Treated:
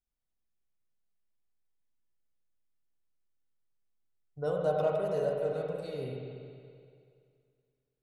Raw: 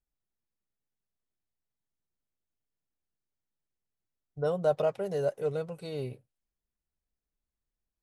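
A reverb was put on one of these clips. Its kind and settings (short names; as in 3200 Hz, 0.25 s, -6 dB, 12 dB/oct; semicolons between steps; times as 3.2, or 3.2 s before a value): spring tank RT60 2.3 s, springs 47/51 ms, chirp 35 ms, DRR -1 dB; gain -4.5 dB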